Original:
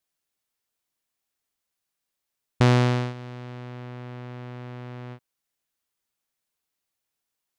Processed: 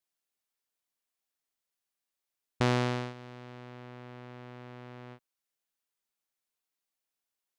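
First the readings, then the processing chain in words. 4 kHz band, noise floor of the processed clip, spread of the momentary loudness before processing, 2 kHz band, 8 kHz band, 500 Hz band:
-5.5 dB, under -85 dBFS, 19 LU, -5.5 dB, -5.5 dB, -6.0 dB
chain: peaking EQ 85 Hz -7.5 dB 2.1 oct; trim -5.5 dB

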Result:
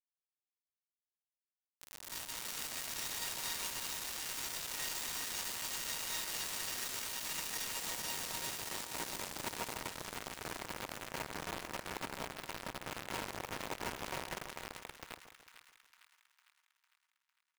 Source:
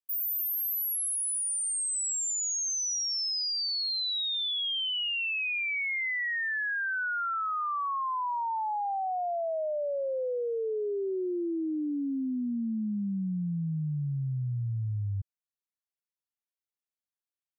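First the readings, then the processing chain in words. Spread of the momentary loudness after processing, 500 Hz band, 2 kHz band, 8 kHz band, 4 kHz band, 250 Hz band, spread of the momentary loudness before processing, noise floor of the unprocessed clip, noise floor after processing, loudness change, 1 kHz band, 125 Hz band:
7 LU, -15.0 dB, -11.5 dB, -9.5 dB, -10.0 dB, -18.0 dB, 5 LU, under -85 dBFS, under -85 dBFS, -10.0 dB, -12.0 dB, -20.0 dB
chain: noise-vocoded speech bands 2; feedback comb 940 Hz, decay 0.35 s, mix 90%; bit crusher 7-bit; on a send: two-band feedback delay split 1.2 kHz, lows 145 ms, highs 453 ms, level -10 dB; on the sum: trim +7 dB

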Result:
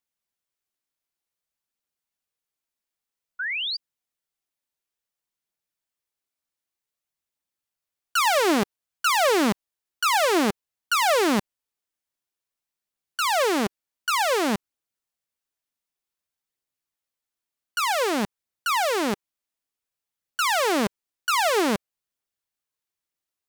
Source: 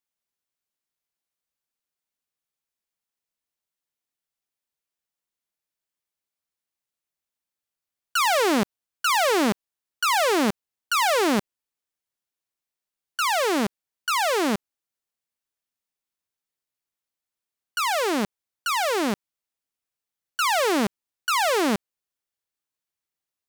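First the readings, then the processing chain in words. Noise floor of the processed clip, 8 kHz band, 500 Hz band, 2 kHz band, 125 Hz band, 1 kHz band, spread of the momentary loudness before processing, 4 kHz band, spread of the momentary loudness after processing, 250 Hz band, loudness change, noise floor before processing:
under -85 dBFS, 0.0 dB, +0.5 dB, +0.5 dB, -0.5 dB, 0.0 dB, 12 LU, +0.5 dB, 12 LU, -0.5 dB, 0.0 dB, under -85 dBFS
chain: phaser 0.54 Hz, delay 3.6 ms, feedback 21%; painted sound rise, 3.39–3.77 s, 1.4–4.9 kHz -28 dBFS

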